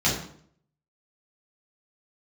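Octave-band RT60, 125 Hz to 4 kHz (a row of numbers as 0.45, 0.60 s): 0.70, 0.70, 0.65, 0.55, 0.50, 0.45 s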